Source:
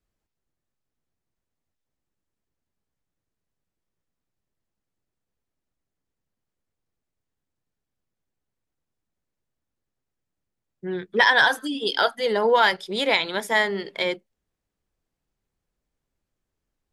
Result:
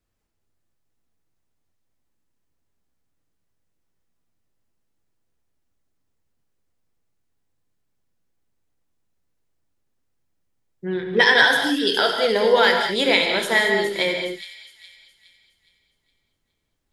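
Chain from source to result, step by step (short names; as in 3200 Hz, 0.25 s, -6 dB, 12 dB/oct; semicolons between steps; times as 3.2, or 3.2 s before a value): dynamic EQ 1000 Hz, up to -7 dB, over -32 dBFS, Q 1.4; on a send: thin delay 0.415 s, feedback 39%, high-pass 3800 Hz, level -8 dB; on the sum: non-linear reverb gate 0.25 s flat, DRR 2 dB; gain +3 dB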